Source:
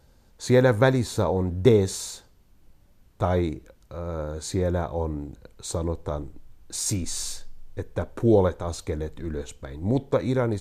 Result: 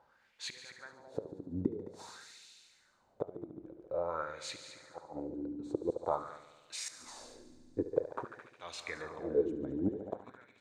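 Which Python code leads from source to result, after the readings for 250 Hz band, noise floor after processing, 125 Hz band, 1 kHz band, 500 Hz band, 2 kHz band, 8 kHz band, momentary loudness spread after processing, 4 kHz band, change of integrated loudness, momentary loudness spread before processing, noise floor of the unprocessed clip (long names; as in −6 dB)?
−13.0 dB, −70 dBFS, −24.0 dB, −10.5 dB, −13.5 dB, −13.5 dB, −16.0 dB, 16 LU, −10.5 dB, −14.0 dB, 18 LU, −58 dBFS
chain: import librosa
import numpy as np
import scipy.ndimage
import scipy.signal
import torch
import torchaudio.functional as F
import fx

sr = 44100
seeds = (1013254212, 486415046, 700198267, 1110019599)

y = fx.gate_flip(x, sr, shuts_db=-17.0, range_db=-28)
y = fx.echo_heads(y, sr, ms=72, heads='all three', feedback_pct=60, wet_db=-13.5)
y = fx.wah_lfo(y, sr, hz=0.49, low_hz=280.0, high_hz=2700.0, q=3.2)
y = F.gain(torch.from_numpy(y), 6.5).numpy()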